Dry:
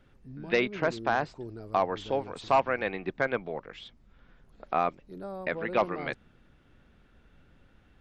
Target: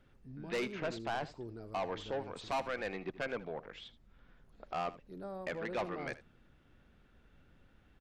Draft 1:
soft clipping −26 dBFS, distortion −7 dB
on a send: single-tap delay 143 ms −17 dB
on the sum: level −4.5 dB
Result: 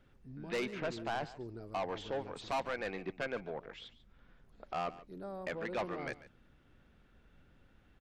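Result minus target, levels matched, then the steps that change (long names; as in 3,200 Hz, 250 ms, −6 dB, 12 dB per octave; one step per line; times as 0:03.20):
echo 65 ms late
change: single-tap delay 78 ms −17 dB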